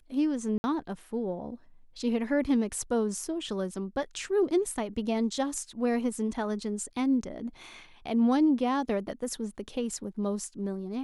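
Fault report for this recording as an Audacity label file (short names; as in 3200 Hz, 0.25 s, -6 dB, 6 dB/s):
0.580000	0.640000	gap 60 ms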